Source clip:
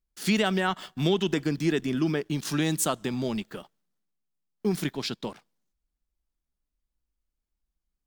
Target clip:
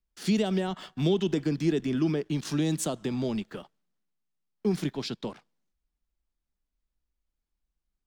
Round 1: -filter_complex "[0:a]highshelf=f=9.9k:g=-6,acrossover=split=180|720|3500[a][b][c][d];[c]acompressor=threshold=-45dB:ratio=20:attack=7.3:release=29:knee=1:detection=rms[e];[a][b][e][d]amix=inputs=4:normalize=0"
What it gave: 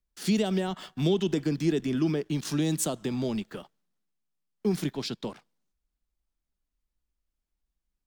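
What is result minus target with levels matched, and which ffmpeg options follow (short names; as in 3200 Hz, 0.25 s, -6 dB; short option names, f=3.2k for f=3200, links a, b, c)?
8000 Hz band +3.0 dB
-filter_complex "[0:a]highshelf=f=9.9k:g=-15,acrossover=split=180|720|3500[a][b][c][d];[c]acompressor=threshold=-45dB:ratio=20:attack=7.3:release=29:knee=1:detection=rms[e];[a][b][e][d]amix=inputs=4:normalize=0"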